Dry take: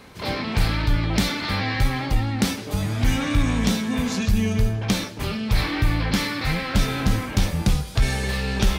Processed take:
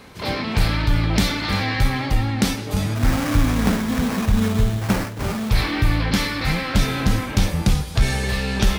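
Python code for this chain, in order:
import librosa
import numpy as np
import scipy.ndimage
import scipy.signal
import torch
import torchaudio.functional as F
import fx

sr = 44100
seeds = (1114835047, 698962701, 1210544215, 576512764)

y = fx.sample_hold(x, sr, seeds[0], rate_hz=3600.0, jitter_pct=20, at=(2.94, 5.49), fade=0.02)
y = y + 10.0 ** (-13.5 / 20.0) * np.pad(y, (int(347 * sr / 1000.0), 0))[:len(y)]
y = F.gain(torch.from_numpy(y), 2.0).numpy()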